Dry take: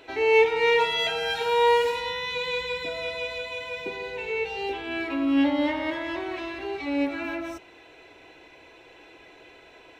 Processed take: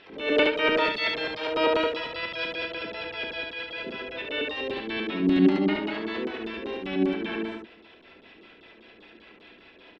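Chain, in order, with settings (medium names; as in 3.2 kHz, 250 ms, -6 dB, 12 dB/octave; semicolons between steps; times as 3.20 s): LFO low-pass square 5.1 Hz 340–2800 Hz; harmony voices -7 st -5 dB, +5 st -4 dB; on a send: early reflections 32 ms -8.5 dB, 72 ms -3.5 dB; on the sum: attacks held to a fixed rise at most 110 dB/s; trim -7.5 dB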